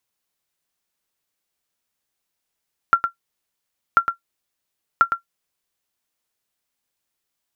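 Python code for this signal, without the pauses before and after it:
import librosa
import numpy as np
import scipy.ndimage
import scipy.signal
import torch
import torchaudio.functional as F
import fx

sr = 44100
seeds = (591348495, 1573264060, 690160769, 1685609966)

y = fx.sonar_ping(sr, hz=1370.0, decay_s=0.11, every_s=1.04, pings=3, echo_s=0.11, echo_db=-7.5, level_db=-4.0)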